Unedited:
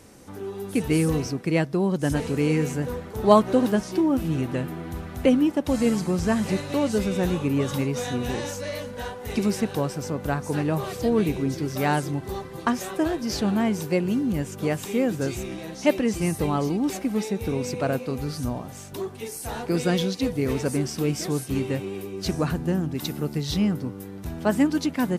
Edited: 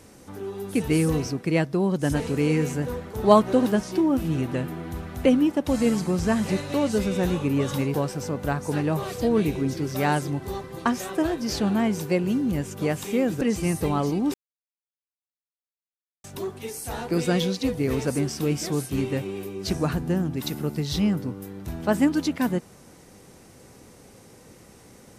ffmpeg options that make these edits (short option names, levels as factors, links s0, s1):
-filter_complex "[0:a]asplit=5[s0][s1][s2][s3][s4];[s0]atrim=end=7.942[s5];[s1]atrim=start=9.748:end=15.222[s6];[s2]atrim=start=15.988:end=16.92,asetpts=PTS-STARTPTS,afade=t=out:st=0.928:d=0.004:c=hsin[s7];[s3]atrim=start=16.92:end=18.82,asetpts=PTS-STARTPTS,volume=0[s8];[s4]atrim=start=18.82,asetpts=PTS-STARTPTS,afade=t=in:d=0.004:c=hsin[s9];[s5][s6]acrossfade=d=0.004:c1=hsin:c2=hsin[s10];[s7][s8][s9]concat=n=3:v=0:a=1[s11];[s10][s11]acrossfade=d=0.004:c1=hsin:c2=hsin"